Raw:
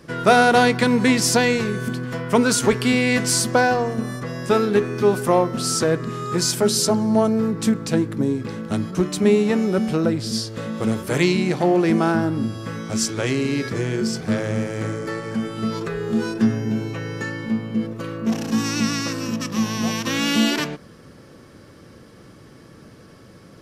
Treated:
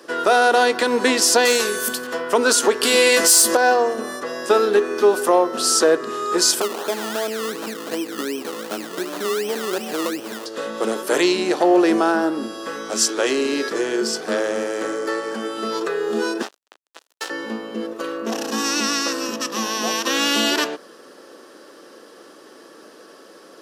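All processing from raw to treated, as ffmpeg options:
-filter_complex "[0:a]asettb=1/sr,asplit=3[a][b][c];[a]atrim=end=1.454[d];[b]atrim=start=1.45:end=2.07,asetpts=PTS-STARTPTS,afade=t=in:d=0.004:c=qsin,afade=t=out:st=0.616:d=0.004:c=qsin,aemphasis=mode=production:type=75fm,bandreject=f=340:w=6.2,aeval=exprs='0.266*(abs(mod(val(0)/0.266+3,4)-2)-1)':c=same[e];[c]atrim=start=2.066[f];[d][e]acrossfade=d=0.004:c1=hsin:c2=qsin[g];[g][f]acrossfade=d=0.004:c1=qsin:c2=hsin,asettb=1/sr,asplit=3[h][i][j];[h]atrim=end=2.834[k];[i]atrim=start=2.83:end=3.57,asetpts=PTS-STARTPTS,afade=t=in:d=0.004:c=qsin,afade=t=out:st=0.736:d=0.004:c=qsin,aemphasis=mode=production:type=50kf,asplit=2[l][m];[m]adelay=18,volume=-6dB[n];[l][n]amix=inputs=2:normalize=0,atrim=end_sample=32634,acontrast=79[o];[j]atrim=start=3.566[p];[k][o]acrossfade=d=0.004:c1=hsin:c2=qsin[q];[q][p]acrossfade=d=0.004:c1=qsin:c2=hsin,asettb=1/sr,asplit=3[r][s][t];[r]atrim=end=6.614[u];[s]atrim=start=6.61:end=10.46,asetpts=PTS-STARTPTS,afade=t=in:d=0.004:c=qsin,afade=t=out:st=3.846:d=0.004:c=qsin,acompressor=threshold=-21dB:ratio=12:attack=3.2:release=140:knee=1:detection=peak,asuperstop=centerf=4000:order=20:qfactor=0.59,acrusher=samples=22:mix=1:aa=0.000001:lfo=1:lforange=13.2:lforate=2.7[v];[t]atrim=start=10.456[w];[u][v]acrossfade=d=0.004:c1=hsin:c2=qsin[x];[x][w]acrossfade=d=0.004:c1=qsin:c2=hsin,asettb=1/sr,asplit=3[y][z][aa];[y]atrim=end=16.424[ab];[z]atrim=start=16.42:end=17.3,asetpts=PTS-STARTPTS,afade=t=in:d=0.004:c=qsin,afade=t=out:st=0.876:d=0.004:c=qsin,highpass=600,acrusher=bits=3:mix=0:aa=0.5[ac];[aa]atrim=start=17.296[ad];[ab][ac]acrossfade=d=0.004:c1=hsin:c2=qsin[ae];[ae][ad]acrossfade=d=0.004:c1=qsin:c2=hsin,highpass=f=330:w=0.5412,highpass=f=330:w=1.3066,equalizer=f=2.2k:w=6.5:g=-9.5,alimiter=limit=-11.5dB:level=0:latency=1:release=147,volume=5.5dB"

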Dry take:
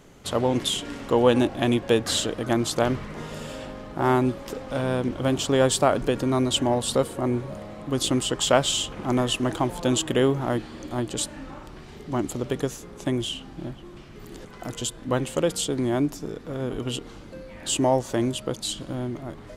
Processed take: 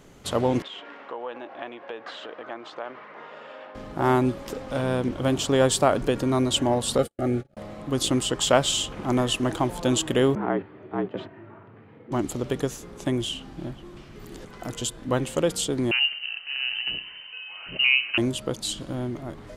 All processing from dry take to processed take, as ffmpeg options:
-filter_complex "[0:a]asettb=1/sr,asplit=3[a][b][c];[a]atrim=end=0.624[d];[b]atrim=start=0.62:end=3.75,asetpts=PTS-STARTPTS,afade=t=in:d=0.004:c=qsin,afade=t=out:st=3.126:d=0.004:c=qsin,acompressor=threshold=-24dB:ratio=6:attack=3.2:release=140:knee=1:detection=peak,highpass=670,lowpass=2.4k,aemphasis=mode=reproduction:type=50fm[e];[c]atrim=start=3.746[f];[d][e]acrossfade=d=0.004:c1=hsin:c2=qsin[g];[g][f]acrossfade=d=0.004:c1=qsin:c2=hsin,asettb=1/sr,asplit=3[h][i][j];[h]atrim=end=6.984[k];[i]atrim=start=6.98:end=7.57,asetpts=PTS-STARTPTS,afade=t=in:d=0.004:c=qsin,afade=t=out:st=0.586:d=0.004:c=qsin,agate=range=-52dB:threshold=-31dB:ratio=16:release=100:detection=peak,asuperstop=centerf=1000:order=20:qfactor=3.4[l];[j]atrim=start=7.566[m];[k][l]acrossfade=d=0.004:c1=hsin:c2=qsin[n];[n][m]acrossfade=d=0.004:c1=qsin:c2=hsin,asettb=1/sr,asplit=3[o][p][q];[o]atrim=end=10.354[r];[p]atrim=start=10.35:end=12.12,asetpts=PTS-STARTPTS,afade=t=in:d=0.004:c=qsin,afade=t=out:st=1.766:d=0.004:c=qsin,agate=range=-7dB:threshold=-34dB:ratio=16:release=100:detection=peak,lowpass=f=2.3k:w=0.5412,lowpass=f=2.3k:w=1.3066,afreqshift=71[s];[q]atrim=start=12.116[t];[r][s]acrossfade=d=0.004:c1=hsin:c2=qsin[u];[u][t]acrossfade=d=0.004:c1=qsin:c2=hsin,asettb=1/sr,asplit=3[v][w][x];[v]atrim=end=15.914[y];[w]atrim=start=15.91:end=18.18,asetpts=PTS-STARTPTS,afade=t=in:d=0.004:c=qsin,afade=t=out:st=2.266:d=0.004:c=qsin,aecho=1:1:65|130|195|260|325:0.178|0.0942|0.05|0.0265|0.014,atrim=end_sample=100107,lowpass=f=2.6k:t=q:w=0.5098,lowpass=f=2.6k:t=q:w=0.6013,lowpass=f=2.6k:t=q:w=0.9,lowpass=f=2.6k:t=q:w=2.563,afreqshift=-3100[z];[x]atrim=start=18.176[aa];[y][z]acrossfade=d=0.004:c1=hsin:c2=qsin[ab];[ab][aa]acrossfade=d=0.004:c1=qsin:c2=hsin"

